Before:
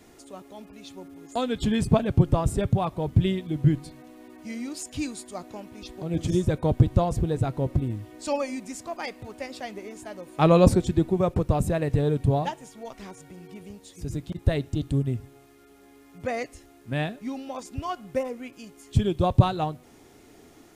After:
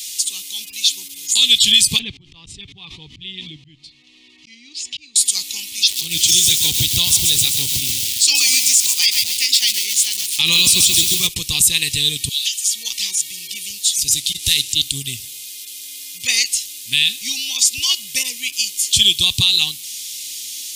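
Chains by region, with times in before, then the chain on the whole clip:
1.99–5.16 s: slow attack 549 ms + tape spacing loss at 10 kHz 39 dB + swell ahead of each attack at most 22 dB/s
5.73–11.27 s: high-pass 51 Hz 24 dB/octave + bit-crushed delay 133 ms, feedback 55%, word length 7-bit, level -7 dB
12.29–12.69 s: Bessel high-pass 2.8 kHz, order 6 + comb 3.9 ms, depth 57% + compression 4:1, threshold -45 dBFS
14.15–14.73 s: CVSD coder 64 kbps + upward compressor, threshold -35 dBFS
whole clip: inverse Chebyshev high-pass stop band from 1.6 kHz, stop band 40 dB; loudness maximiser +34.5 dB; trim -1 dB

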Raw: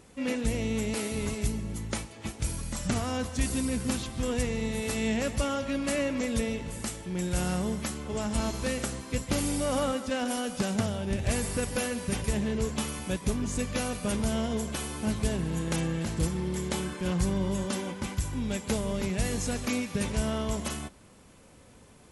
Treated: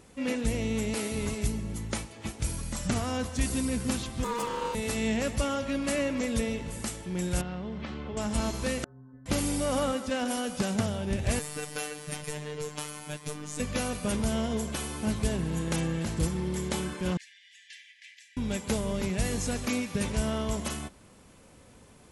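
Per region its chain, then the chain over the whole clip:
4.24–4.75 s: comb filter that takes the minimum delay 3.6 ms + resonant low shelf 120 Hz -11 dB, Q 3 + ring modulator 710 Hz
7.41–8.17 s: low-pass 3.9 kHz 24 dB/octave + compression, threshold -32 dBFS
8.84–9.26 s: steep low-pass 1.7 kHz 96 dB/octave + compression 4:1, threshold -36 dBFS + inharmonic resonator 130 Hz, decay 0.67 s, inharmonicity 0.008
11.39–13.60 s: bass shelf 360 Hz -7.5 dB + robot voice 150 Hz
17.17–18.37 s: brick-wall FIR high-pass 1.6 kHz + tape spacing loss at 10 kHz 24 dB
whole clip: none

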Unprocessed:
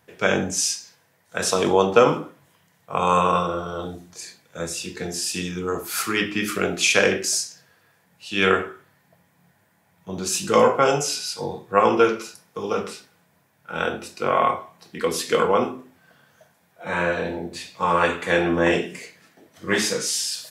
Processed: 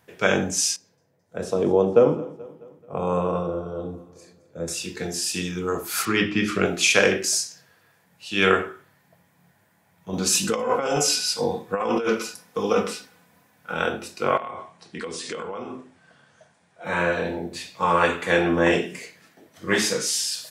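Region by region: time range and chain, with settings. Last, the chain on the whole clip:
0.76–4.68 s: FFT filter 510 Hz 0 dB, 1.1 kHz -12 dB, 3.8 kHz -17 dB + feedback delay 216 ms, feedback 53%, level -20 dB
6.05–6.66 s: low-pass 5.9 kHz + bass shelf 240 Hz +6.5 dB
10.13–13.74 s: compressor with a negative ratio -23 dBFS + comb 4 ms, depth 43%
14.37–16.85 s: compression 16:1, threshold -28 dBFS + brick-wall FIR low-pass 10 kHz
whole clip: none

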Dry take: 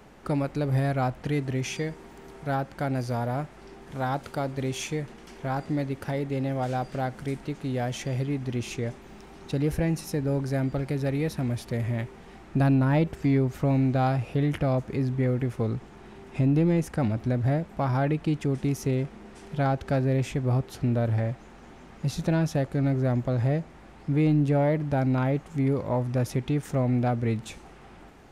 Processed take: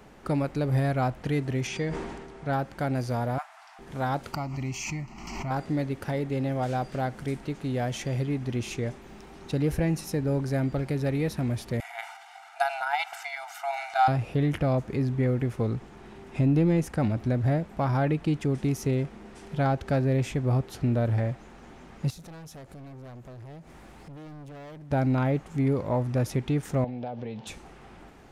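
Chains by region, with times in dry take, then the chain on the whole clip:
1.67–2.53 s: low-pass 10 kHz 24 dB/octave + treble shelf 7 kHz -8 dB + decay stretcher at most 39 dB/s
3.38–3.79 s: brick-wall FIR high-pass 620 Hz + peaking EQ 1.2 kHz +4 dB 1 oct
4.33–5.51 s: static phaser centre 2.4 kHz, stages 8 + swell ahead of each attack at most 42 dB/s
11.80–14.08 s: brick-wall FIR high-pass 670 Hz + comb 1.4 ms, depth 79% + transient shaper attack +5 dB, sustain +9 dB
22.10–24.91 s: treble shelf 7.8 kHz +11.5 dB + hard clipper -28 dBFS + compression 12:1, threshold -43 dBFS
26.84–27.47 s: cabinet simulation 170–5200 Hz, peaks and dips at 320 Hz -9 dB, 520 Hz +6 dB, 840 Hz +7 dB, 1.3 kHz -9 dB, 2 kHz -6 dB, 3.2 kHz +5 dB + compression, threshold -31 dBFS
whole clip: none

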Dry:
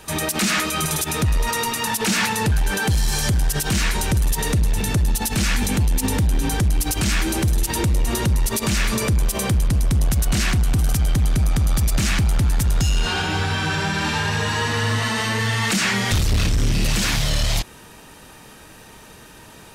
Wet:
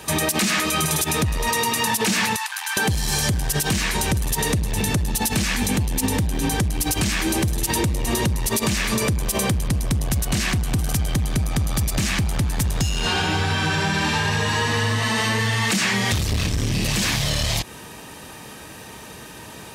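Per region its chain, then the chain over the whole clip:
2.36–2.77 s: steep high-pass 870 Hz 48 dB/octave + compression 4:1, threshold -27 dBFS
whole clip: high-pass 64 Hz 12 dB/octave; band-stop 1.4 kHz, Q 11; compression, threshold -23 dBFS; trim +5 dB

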